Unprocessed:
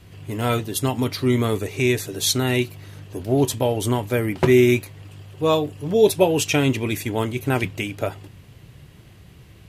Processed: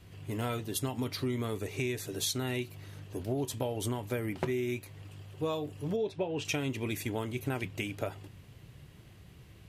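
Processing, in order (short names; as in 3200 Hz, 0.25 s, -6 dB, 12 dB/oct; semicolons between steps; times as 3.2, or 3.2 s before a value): 5.96–6.45 LPF 3400 Hz 12 dB/oct; compressor 10:1, threshold -22 dBFS, peak gain reduction 12.5 dB; gain -7 dB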